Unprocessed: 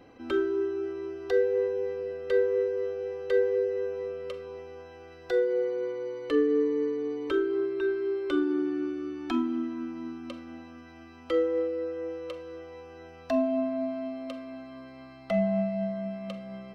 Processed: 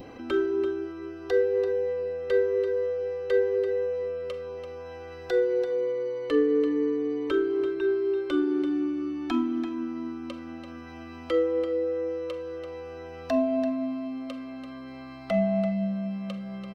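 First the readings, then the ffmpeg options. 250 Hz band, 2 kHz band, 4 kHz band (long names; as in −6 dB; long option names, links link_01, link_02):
+2.5 dB, +1.0 dB, +2.0 dB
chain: -filter_complex "[0:a]adynamicequalizer=threshold=0.00501:dfrequency=1500:dqfactor=1.6:tfrequency=1500:tqfactor=1.6:attack=5:release=100:ratio=0.375:range=2:mode=cutabove:tftype=bell,acompressor=mode=upward:threshold=-37dB:ratio=2.5,asplit=2[link_01][link_02];[link_02]aecho=0:1:337:0.335[link_03];[link_01][link_03]amix=inputs=2:normalize=0,volume=1.5dB"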